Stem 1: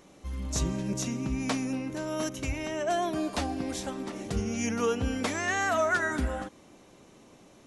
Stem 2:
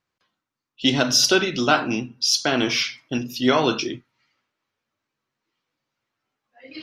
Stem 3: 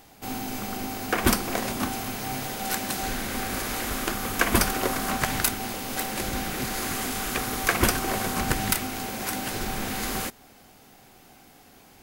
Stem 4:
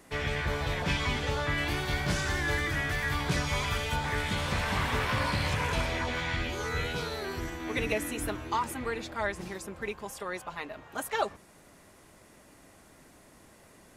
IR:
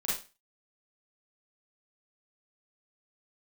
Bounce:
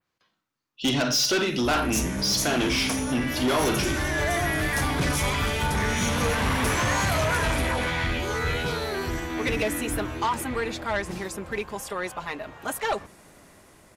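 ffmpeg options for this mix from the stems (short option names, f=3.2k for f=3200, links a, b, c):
-filter_complex "[0:a]aexciter=amount=7.9:drive=6.4:freq=5.6k,equalizer=f=7.6k:t=o:w=0.55:g=-11.5,adelay=1400,volume=0.5dB,asplit=2[a][b];[b]volume=-15.5dB[c];[1:a]volume=0dB,asplit=2[d][e];[e]volume=-14.5dB[f];[3:a]dynaudnorm=f=210:g=21:m=12dB,adelay=1700,volume=-4dB[g];[4:a]atrim=start_sample=2205[h];[c][f]amix=inputs=2:normalize=0[i];[i][h]afir=irnorm=-1:irlink=0[j];[a][d][g][j]amix=inputs=4:normalize=0,adynamicequalizer=threshold=0.0158:dfrequency=5800:dqfactor=0.76:tfrequency=5800:tqfactor=0.76:attack=5:release=100:ratio=0.375:range=1.5:mode=cutabove:tftype=bell,asoftclip=type=tanh:threshold=-19dB"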